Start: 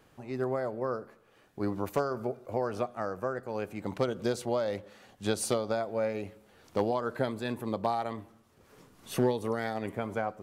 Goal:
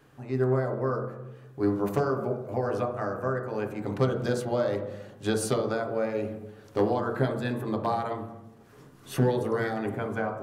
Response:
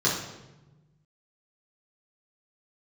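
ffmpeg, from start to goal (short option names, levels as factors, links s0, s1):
-filter_complex "[0:a]asplit=2[s0][s1];[1:a]atrim=start_sample=2205,lowpass=2000[s2];[s1][s2]afir=irnorm=-1:irlink=0,volume=0.211[s3];[s0][s3]amix=inputs=2:normalize=0"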